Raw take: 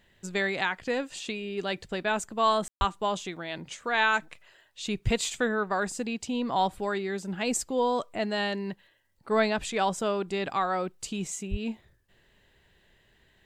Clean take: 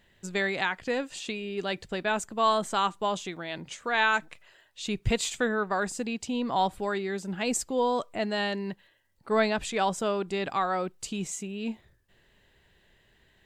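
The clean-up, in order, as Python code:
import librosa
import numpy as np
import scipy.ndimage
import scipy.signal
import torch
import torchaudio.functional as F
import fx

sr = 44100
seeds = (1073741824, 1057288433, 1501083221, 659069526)

y = fx.highpass(x, sr, hz=140.0, slope=24, at=(2.78, 2.9), fade=0.02)
y = fx.highpass(y, sr, hz=140.0, slope=24, at=(11.5, 11.62), fade=0.02)
y = fx.fix_ambience(y, sr, seeds[0], print_start_s=8.76, print_end_s=9.26, start_s=2.68, end_s=2.81)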